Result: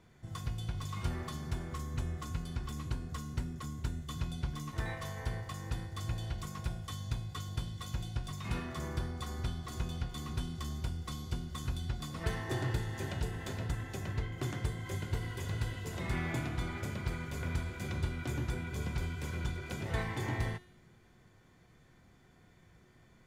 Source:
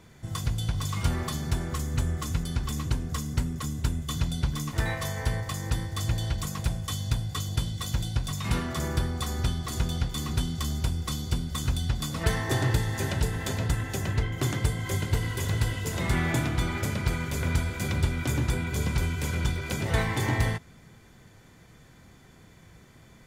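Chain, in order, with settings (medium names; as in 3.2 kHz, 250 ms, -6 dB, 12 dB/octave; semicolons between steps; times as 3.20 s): treble shelf 5.1 kHz -7 dB; feedback comb 360 Hz, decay 0.83 s, mix 80%; trim +4.5 dB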